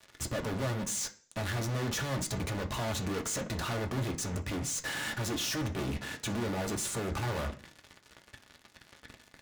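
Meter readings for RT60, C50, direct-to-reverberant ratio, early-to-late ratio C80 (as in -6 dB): 0.40 s, 15.0 dB, 3.5 dB, 19.5 dB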